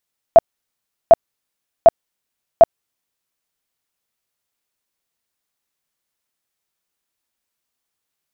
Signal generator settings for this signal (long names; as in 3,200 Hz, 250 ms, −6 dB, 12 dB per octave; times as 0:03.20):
tone bursts 669 Hz, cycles 18, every 0.75 s, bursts 4, −1.5 dBFS